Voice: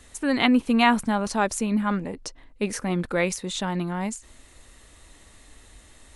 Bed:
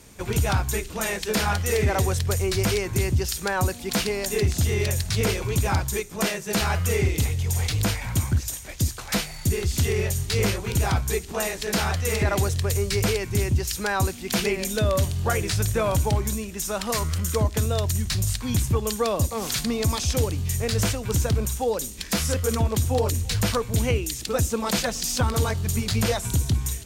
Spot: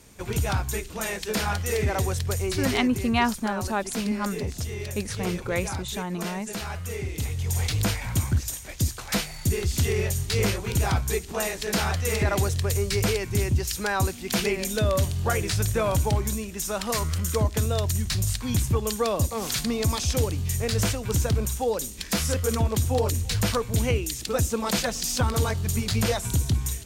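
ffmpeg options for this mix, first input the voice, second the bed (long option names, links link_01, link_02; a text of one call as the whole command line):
ffmpeg -i stem1.wav -i stem2.wav -filter_complex "[0:a]adelay=2350,volume=-4dB[link_01];[1:a]volume=5.5dB,afade=type=out:start_time=2.5:duration=0.58:silence=0.473151,afade=type=in:start_time=7.07:duration=0.51:silence=0.375837[link_02];[link_01][link_02]amix=inputs=2:normalize=0" out.wav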